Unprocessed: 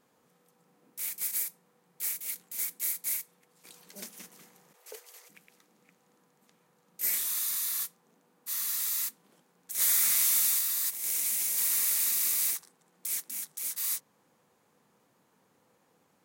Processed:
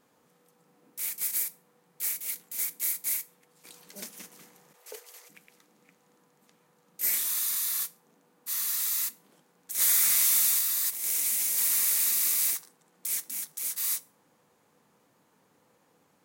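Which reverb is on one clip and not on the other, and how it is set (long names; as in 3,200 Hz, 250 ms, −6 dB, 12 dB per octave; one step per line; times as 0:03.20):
feedback delay network reverb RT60 0.34 s, high-frequency decay 1×, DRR 16 dB
level +2 dB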